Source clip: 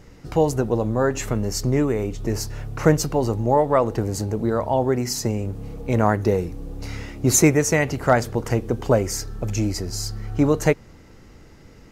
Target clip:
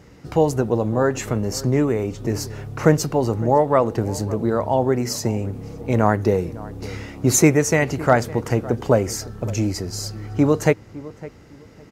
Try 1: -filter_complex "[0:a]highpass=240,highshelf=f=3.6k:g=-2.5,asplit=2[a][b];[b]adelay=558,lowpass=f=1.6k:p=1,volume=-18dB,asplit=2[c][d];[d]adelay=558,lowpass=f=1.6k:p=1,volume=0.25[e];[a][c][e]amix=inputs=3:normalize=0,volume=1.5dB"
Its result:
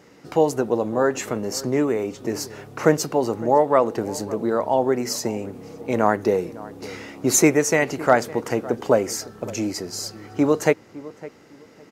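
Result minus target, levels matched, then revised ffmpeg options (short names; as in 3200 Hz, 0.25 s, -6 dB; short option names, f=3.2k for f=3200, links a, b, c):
125 Hz band -9.0 dB
-filter_complex "[0:a]highpass=70,highshelf=f=3.6k:g=-2.5,asplit=2[a][b];[b]adelay=558,lowpass=f=1.6k:p=1,volume=-18dB,asplit=2[c][d];[d]adelay=558,lowpass=f=1.6k:p=1,volume=0.25[e];[a][c][e]amix=inputs=3:normalize=0,volume=1.5dB"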